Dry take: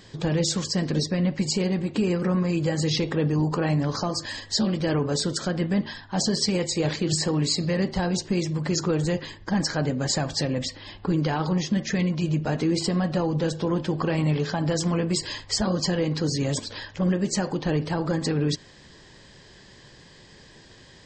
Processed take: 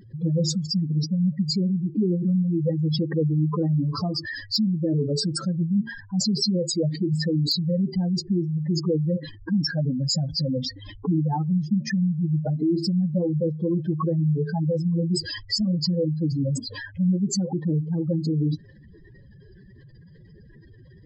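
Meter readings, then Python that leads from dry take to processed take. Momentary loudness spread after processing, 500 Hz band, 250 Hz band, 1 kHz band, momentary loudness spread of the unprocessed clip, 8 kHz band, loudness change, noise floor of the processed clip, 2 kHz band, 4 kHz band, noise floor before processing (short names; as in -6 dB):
4 LU, -2.0 dB, +1.5 dB, -6.0 dB, 4 LU, -5.0 dB, +1.0 dB, -49 dBFS, -5.5 dB, -0.5 dB, -50 dBFS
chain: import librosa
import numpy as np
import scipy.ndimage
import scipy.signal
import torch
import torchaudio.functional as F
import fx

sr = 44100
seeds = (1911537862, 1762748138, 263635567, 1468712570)

y = fx.spec_expand(x, sr, power=3.7)
y = 10.0 ** (-15.5 / 20.0) * (np.abs((y / 10.0 ** (-15.5 / 20.0) + 3.0) % 4.0 - 2.0) - 1.0)
y = F.gain(torch.from_numpy(y), 2.0).numpy()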